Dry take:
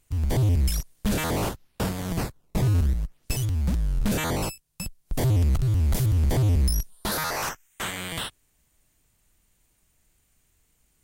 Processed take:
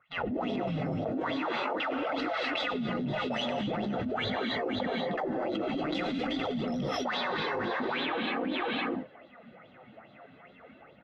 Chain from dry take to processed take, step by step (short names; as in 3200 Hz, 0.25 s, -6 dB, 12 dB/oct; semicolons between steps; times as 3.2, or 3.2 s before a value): G.711 law mismatch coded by A; comb 1.5 ms, depth 64%; spectral gate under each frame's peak -10 dB weak; tape spacing loss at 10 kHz 31 dB; low-pass opened by the level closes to 1900 Hz, open at -29 dBFS; AGC gain up to 10 dB; wah 2.4 Hz 240–3800 Hz, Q 7.9; echo 0.507 s -15.5 dB; non-linear reverb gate 0.28 s rising, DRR 1 dB; flange 0.45 Hz, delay 0.5 ms, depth 8.7 ms, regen -29%; fast leveller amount 100%